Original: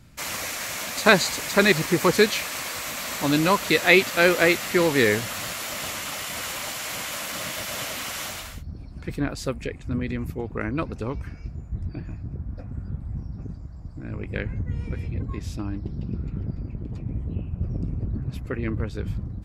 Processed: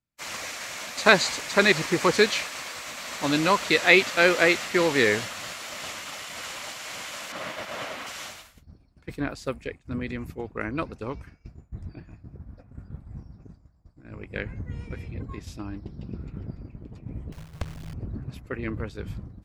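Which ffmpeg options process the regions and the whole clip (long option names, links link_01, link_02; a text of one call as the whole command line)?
ffmpeg -i in.wav -filter_complex "[0:a]asettb=1/sr,asplit=3[link_01][link_02][link_03];[link_01]atrim=end=7.324[link_04];[link_02]atrim=start=7.32:end=8.07,asetpts=PTS-STARTPTS,afade=type=in:duration=0.004:curve=qsin,afade=type=out:start_time=0.746:duration=0.004:curve=qsin,lowpass=frequency=1200:poles=1,lowshelf=frequency=160:gain=-9,acontrast=64[link_05];[link_03]atrim=start=8.066[link_06];[link_04][link_05]acrossfade=duration=0.004:curve1=hsin:curve2=qsin[link_07];[link_07][link_06]acrossfade=duration=0.004:curve1=qsin:curve2=hsin,asettb=1/sr,asplit=3[link_08][link_09][link_10];[link_08]atrim=end=17.324[link_11];[link_09]atrim=start=17.32:end=17.94,asetpts=PTS-STARTPTS,afade=type=in:duration=0.004:curve=qsin,afade=type=out:start_time=0.616:duration=0.004:curve=qsin,acrusher=bits=4:dc=4:mix=0:aa=0.000001,afreqshift=-160[link_12];[link_10]atrim=start=17.936[link_13];[link_11][link_12]acrossfade=duration=0.004:curve1=hsin:curve2=qsin[link_14];[link_14][link_13]acrossfade=duration=0.004:curve1=qsin:curve2=hsin,agate=range=-33dB:threshold=-27dB:ratio=3:detection=peak,acrossover=split=8500[link_15][link_16];[link_16]acompressor=threshold=-55dB:ratio=4:attack=1:release=60[link_17];[link_15][link_17]amix=inputs=2:normalize=0,lowshelf=frequency=260:gain=-7" out.wav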